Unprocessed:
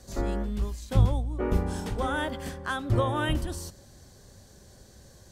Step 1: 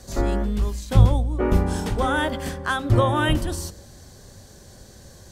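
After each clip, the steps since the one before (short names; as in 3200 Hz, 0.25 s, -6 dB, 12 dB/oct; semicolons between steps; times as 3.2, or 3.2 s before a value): de-hum 66.49 Hz, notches 9; gain +7 dB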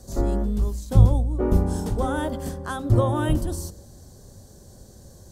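bell 2300 Hz -14 dB 1.9 oct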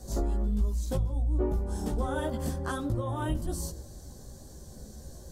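compressor 12:1, threshold -27 dBFS, peak gain reduction 19 dB; chorus voices 6, 0.38 Hz, delay 16 ms, depth 3 ms; gain +3 dB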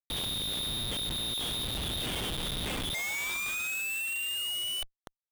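painted sound fall, 2.94–4.83, 710–1600 Hz -24 dBFS; inverted band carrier 3700 Hz; Schmitt trigger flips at -30 dBFS; gain -7.5 dB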